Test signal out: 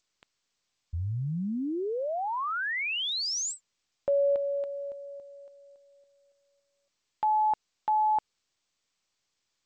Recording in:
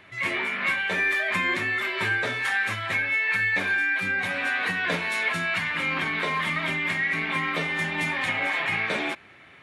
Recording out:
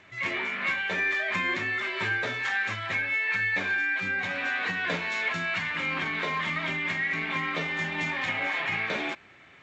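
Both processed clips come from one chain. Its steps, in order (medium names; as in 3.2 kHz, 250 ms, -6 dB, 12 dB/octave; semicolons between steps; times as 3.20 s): trim -3 dB; G.722 64 kbps 16 kHz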